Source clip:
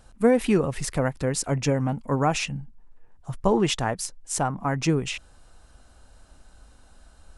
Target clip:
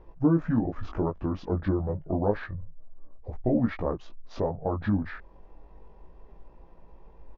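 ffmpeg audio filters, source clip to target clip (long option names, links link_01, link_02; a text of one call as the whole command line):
ffmpeg -i in.wav -filter_complex "[0:a]lowpass=1700,asetrate=28595,aresample=44100,atempo=1.54221,equalizer=frequency=110:width=2.2:gain=-7.5,asplit=2[link_01][link_02];[link_02]acompressor=threshold=-37dB:ratio=6,volume=3dB[link_03];[link_01][link_03]amix=inputs=2:normalize=0,flanger=delay=17:depth=3.3:speed=0.29" out.wav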